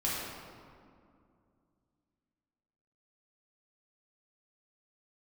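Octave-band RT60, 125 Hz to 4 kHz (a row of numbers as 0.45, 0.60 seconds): 3.2, 3.1, 2.5, 2.2, 1.6, 1.2 seconds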